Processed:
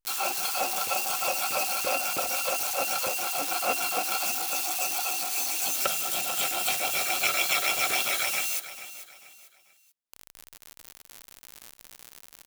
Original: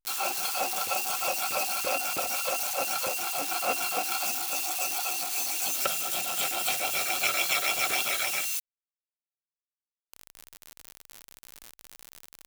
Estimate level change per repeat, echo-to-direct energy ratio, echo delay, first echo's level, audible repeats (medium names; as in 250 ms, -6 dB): -9.5 dB, -13.0 dB, 441 ms, -13.5 dB, 3